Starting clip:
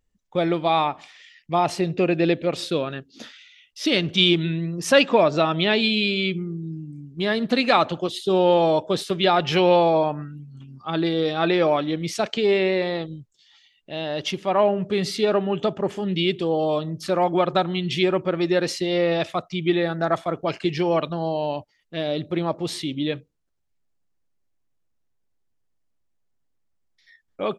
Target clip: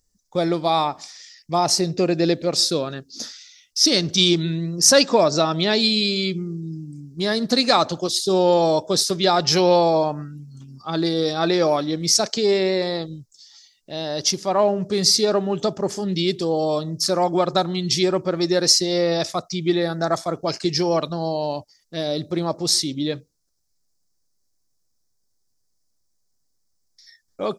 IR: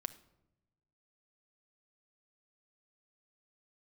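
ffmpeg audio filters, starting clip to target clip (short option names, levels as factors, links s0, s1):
-af "highshelf=f=3900:t=q:w=3:g=10.5,volume=1.12"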